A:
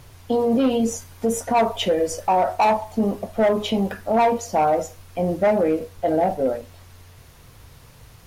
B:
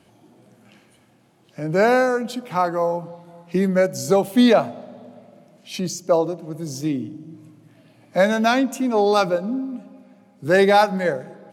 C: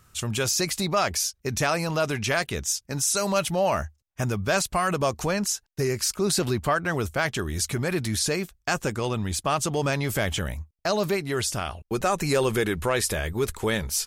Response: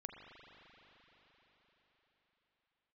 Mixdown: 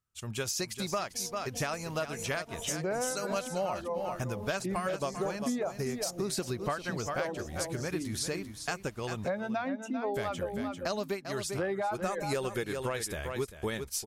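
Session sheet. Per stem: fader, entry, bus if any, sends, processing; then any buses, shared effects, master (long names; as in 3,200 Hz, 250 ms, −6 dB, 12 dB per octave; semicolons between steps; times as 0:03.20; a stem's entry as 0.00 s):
−18.0 dB, 0.85 s, no send, echo send −4.5 dB, compressor whose output falls as the input rises −25 dBFS, ratio −0.5
−8.5 dB, 1.10 s, no send, echo send −10 dB, reverb reduction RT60 1.6 s; treble cut that deepens with the level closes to 2,100 Hz, closed at −14 dBFS
+1.5 dB, 0.00 s, muted 0:09.25–0:10.14, no send, echo send −11 dB, expander for the loud parts 2.5 to 1, over −41 dBFS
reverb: not used
echo: single-tap delay 396 ms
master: downward compressor 5 to 1, threshold −30 dBFS, peak gain reduction 11.5 dB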